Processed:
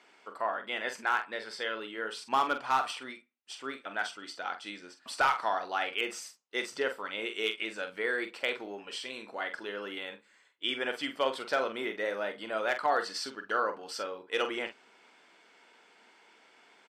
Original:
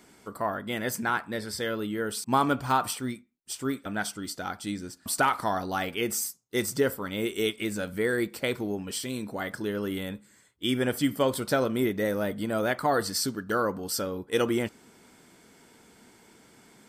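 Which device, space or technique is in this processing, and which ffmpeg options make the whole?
megaphone: -filter_complex "[0:a]highpass=600,lowpass=3900,equalizer=f=2700:t=o:w=0.41:g=5,asoftclip=type=hard:threshold=0.133,asplit=2[s0][s1];[s1]adelay=45,volume=0.355[s2];[s0][s2]amix=inputs=2:normalize=0,volume=0.891"

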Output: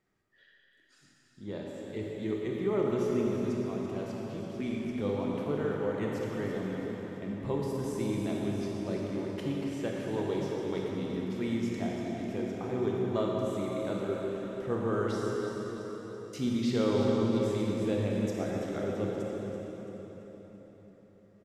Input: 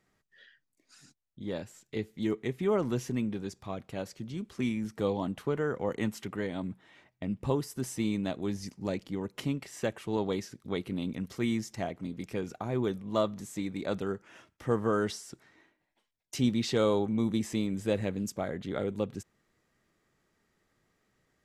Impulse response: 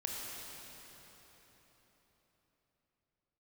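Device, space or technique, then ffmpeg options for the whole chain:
swimming-pool hall: -filter_complex "[0:a]equalizer=f=370:t=o:w=0.28:g=4.5,aecho=1:1:334|668|1002|1336|1670:0.299|0.146|0.0717|0.0351|0.0172[s0];[1:a]atrim=start_sample=2205[s1];[s0][s1]afir=irnorm=-1:irlink=0,highshelf=f=4500:g=-6,volume=0.708"

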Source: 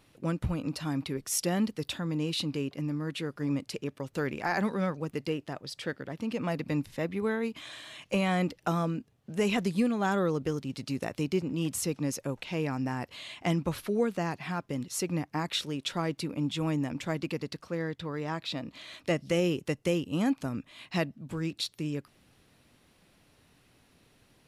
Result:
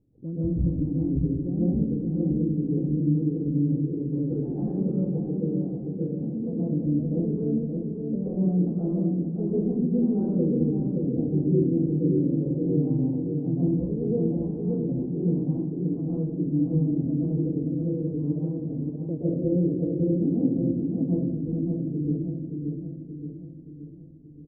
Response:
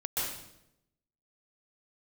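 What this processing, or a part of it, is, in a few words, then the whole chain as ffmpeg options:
next room: -filter_complex "[0:a]lowpass=f=390:w=0.5412,lowpass=f=390:w=1.3066[s0];[1:a]atrim=start_sample=2205[s1];[s0][s1]afir=irnorm=-1:irlink=0,asettb=1/sr,asplit=3[s2][s3][s4];[s2]atrim=end=11.364[s5];[s3]atrim=start=11.36:end=13,asetpts=PTS-STARTPTS,afade=t=in:d=0.004:c=qsin,afade=t=out:st=1.636:d=0.004:c=qsin,asplit=2[s6][s7];[s7]adelay=40,volume=0.75[s8];[s6][s8]amix=inputs=2:normalize=0,atrim=end_sample=72324[s9];[s4]atrim=start=12.996[s10];[s5][s9]acrossfade=d=0.004:c1=hsin:c2=qsin[s11];[s11][s10]acrossfade=d=0.004:c1=qsin:c2=hsin,asplit=2[s12][s13];[s13]adelay=574,lowpass=f=1100:p=1,volume=0.631,asplit=2[s14][s15];[s15]adelay=574,lowpass=f=1100:p=1,volume=0.54,asplit=2[s16][s17];[s17]adelay=574,lowpass=f=1100:p=1,volume=0.54,asplit=2[s18][s19];[s19]adelay=574,lowpass=f=1100:p=1,volume=0.54,asplit=2[s20][s21];[s21]adelay=574,lowpass=f=1100:p=1,volume=0.54,asplit=2[s22][s23];[s23]adelay=574,lowpass=f=1100:p=1,volume=0.54,asplit=2[s24][s25];[s25]adelay=574,lowpass=f=1100:p=1,volume=0.54[s26];[s12][s14][s16][s18][s20][s22][s24][s26]amix=inputs=8:normalize=0"

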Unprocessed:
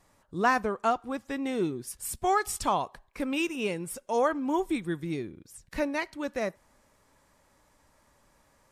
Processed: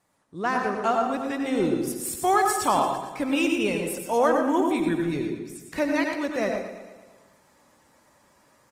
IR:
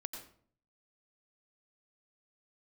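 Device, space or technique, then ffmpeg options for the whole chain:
far-field microphone of a smart speaker: -filter_complex "[0:a]aecho=1:1:114|228|342|456|570|684|798:0.266|0.157|0.0926|0.0546|0.0322|0.019|0.0112[s0];[1:a]atrim=start_sample=2205[s1];[s0][s1]afir=irnorm=-1:irlink=0,highpass=110,dynaudnorm=f=180:g=9:m=2.24" -ar 48000 -c:a libopus -b:a 24k

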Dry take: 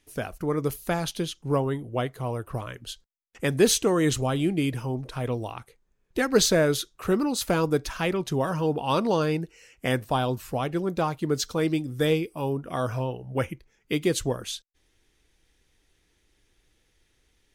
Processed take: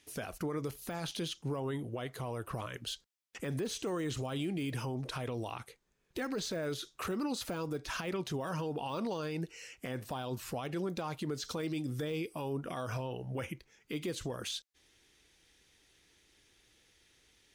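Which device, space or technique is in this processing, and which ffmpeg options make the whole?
broadcast voice chain: -af "highpass=f=100:p=1,deesser=0.95,acompressor=threshold=0.0355:ratio=5,equalizer=f=4400:t=o:w=2.5:g=5,alimiter=level_in=1.68:limit=0.0631:level=0:latency=1:release=29,volume=0.596"

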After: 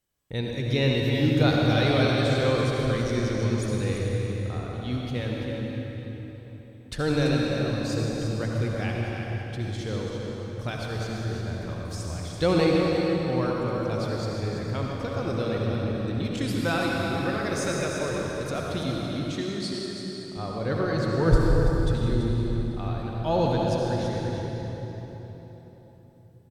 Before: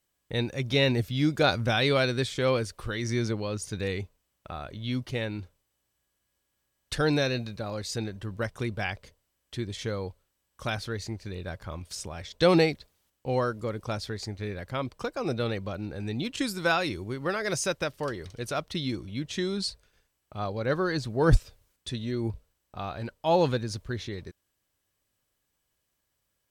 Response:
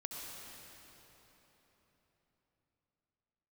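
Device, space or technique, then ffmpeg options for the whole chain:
cave: -filter_complex "[0:a]aecho=1:1:334:0.376[s0];[1:a]atrim=start_sample=2205[s1];[s0][s1]afir=irnorm=-1:irlink=0,asettb=1/sr,asplit=3[s2][s3][s4];[s2]atrim=end=19.324[s5];[s3]atrim=start=19.32:end=20.37,asetpts=PTS-STARTPTS,afade=t=in:d=0.004:c=qsin,afade=t=out:st=1.046:d=0.004:c=qsin,highpass=f=220:p=1[s6];[s4]atrim=start=20.366[s7];[s5][s6]acrossfade=d=0.004:c1=hsin:c2=qsin[s8];[s8][s7]acrossfade=d=0.004:c1=qsin:c2=hsin,lowshelf=f=400:g=5.5"

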